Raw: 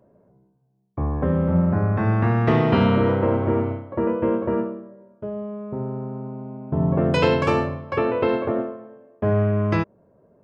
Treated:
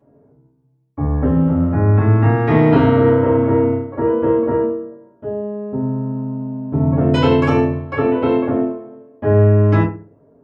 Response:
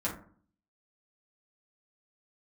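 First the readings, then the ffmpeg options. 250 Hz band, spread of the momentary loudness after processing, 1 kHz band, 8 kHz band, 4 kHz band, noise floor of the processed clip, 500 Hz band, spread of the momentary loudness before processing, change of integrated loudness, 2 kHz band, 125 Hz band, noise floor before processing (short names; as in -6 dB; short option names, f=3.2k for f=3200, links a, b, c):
+6.5 dB, 13 LU, +4.0 dB, n/a, +2.0 dB, -55 dBFS, +6.0 dB, 14 LU, +6.0 dB, +2.5 dB, +6.5 dB, -61 dBFS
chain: -filter_complex "[1:a]atrim=start_sample=2205,asetrate=61740,aresample=44100[a];[0:a][a]afir=irnorm=-1:irlink=0"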